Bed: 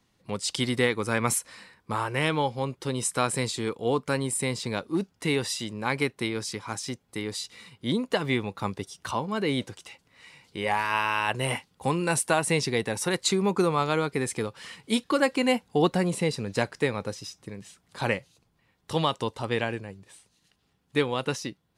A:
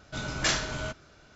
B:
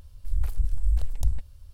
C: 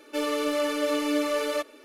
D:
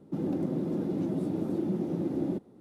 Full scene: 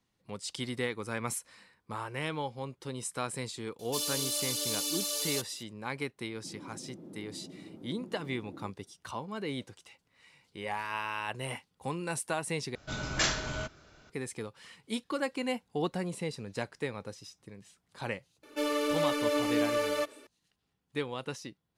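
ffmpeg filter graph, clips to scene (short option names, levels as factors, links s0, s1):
-filter_complex "[3:a]asplit=2[s0][s1];[0:a]volume=0.335[s2];[s0]aexciter=amount=8.9:drive=8.7:freq=3200[s3];[s2]asplit=2[s4][s5];[s4]atrim=end=12.754[s6];[1:a]atrim=end=1.35,asetpts=PTS-STARTPTS,volume=0.794[s7];[s5]atrim=start=14.096[s8];[s3]atrim=end=1.84,asetpts=PTS-STARTPTS,volume=0.15,afade=t=in:d=0.004:c=hsin,afade=t=out:st=1.836:d=0.004:c=hsin,adelay=3790[s9];[4:a]atrim=end=2.6,asetpts=PTS-STARTPTS,volume=0.133,afade=t=in:d=0.004:c=hsin,afade=t=out:st=2.596:d=0.004:c=hsin,adelay=6320[s10];[s1]atrim=end=1.84,asetpts=PTS-STARTPTS,volume=0.708,afade=t=in:d=0.004:c=hsin,afade=t=out:st=1.836:d=0.004:c=hsin,adelay=18430[s11];[s6][s7]acrossfade=d=0.004:c1=hsin:c2=hsin[s12];[s12][s8]acrossfade=d=0.004:c1=hsin:c2=hsin[s13];[s13][s9][s10][s11]amix=inputs=4:normalize=0"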